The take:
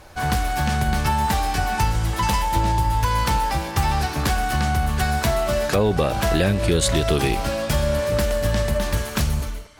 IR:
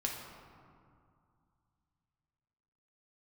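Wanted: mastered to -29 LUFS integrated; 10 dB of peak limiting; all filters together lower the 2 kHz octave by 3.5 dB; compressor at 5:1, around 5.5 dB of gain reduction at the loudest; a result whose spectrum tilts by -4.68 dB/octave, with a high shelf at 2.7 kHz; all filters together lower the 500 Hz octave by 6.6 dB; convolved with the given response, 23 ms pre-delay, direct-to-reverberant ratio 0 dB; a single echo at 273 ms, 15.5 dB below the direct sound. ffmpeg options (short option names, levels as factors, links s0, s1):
-filter_complex "[0:a]equalizer=f=500:t=o:g=-8.5,equalizer=f=2000:t=o:g=-6,highshelf=f=2700:g=4,acompressor=threshold=0.0794:ratio=5,alimiter=limit=0.119:level=0:latency=1,aecho=1:1:273:0.168,asplit=2[s0][s1];[1:a]atrim=start_sample=2205,adelay=23[s2];[s1][s2]afir=irnorm=-1:irlink=0,volume=0.708[s3];[s0][s3]amix=inputs=2:normalize=0,volume=0.631"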